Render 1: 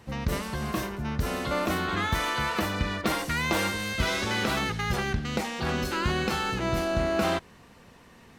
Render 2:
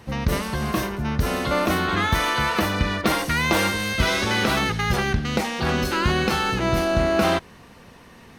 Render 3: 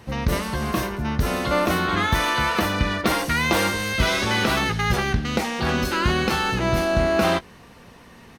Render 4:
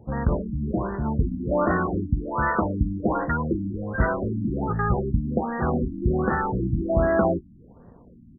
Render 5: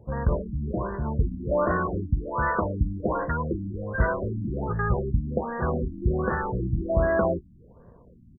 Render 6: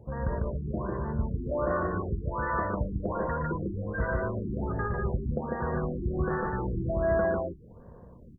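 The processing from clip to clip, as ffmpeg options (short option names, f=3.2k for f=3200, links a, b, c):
-af "bandreject=f=7.4k:w=9.7,volume=6dB"
-filter_complex "[0:a]asplit=2[a][b];[b]adelay=17,volume=-13dB[c];[a][c]amix=inputs=2:normalize=0"
-af "adynamicsmooth=sensitivity=3:basefreq=570,afftfilt=real='re*lt(b*sr/1024,310*pow(2000/310,0.5+0.5*sin(2*PI*1.3*pts/sr)))':imag='im*lt(b*sr/1024,310*pow(2000/310,0.5+0.5*sin(2*PI*1.3*pts/sr)))':win_size=1024:overlap=0.75"
-af "aecho=1:1:1.9:0.41,volume=-2.5dB"
-filter_complex "[0:a]acompressor=threshold=-40dB:ratio=1.5,asplit=2[a][b];[b]aecho=0:1:116.6|148.7:0.398|0.794[c];[a][c]amix=inputs=2:normalize=0"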